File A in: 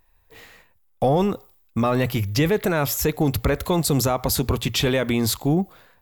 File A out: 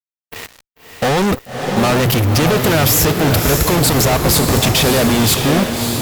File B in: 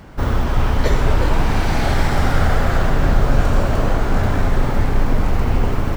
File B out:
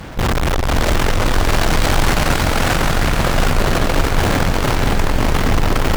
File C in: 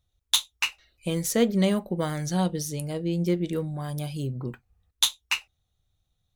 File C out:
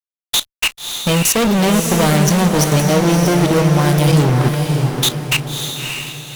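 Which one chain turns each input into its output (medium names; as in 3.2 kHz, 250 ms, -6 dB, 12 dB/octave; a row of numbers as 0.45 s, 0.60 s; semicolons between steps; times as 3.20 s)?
fuzz box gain 40 dB, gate -44 dBFS; level held to a coarse grid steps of 16 dB; echo that smears into a reverb 597 ms, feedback 42%, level -4.5 dB; peak normalisation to -3 dBFS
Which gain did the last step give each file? +2.0 dB, +0.5 dB, +2.0 dB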